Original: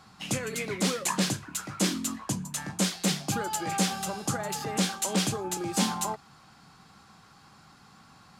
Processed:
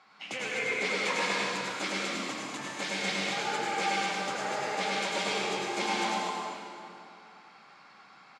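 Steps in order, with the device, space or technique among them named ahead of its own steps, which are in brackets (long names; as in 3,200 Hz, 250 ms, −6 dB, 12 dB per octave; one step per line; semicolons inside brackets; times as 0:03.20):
station announcement (band-pass filter 430–4,100 Hz; parametric band 2,200 Hz +9 dB 0.26 octaves; loudspeakers that aren't time-aligned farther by 35 metres −4 dB, 80 metres −10 dB; convolution reverb RT60 2.6 s, pre-delay 79 ms, DRR −3.5 dB)
level −4.5 dB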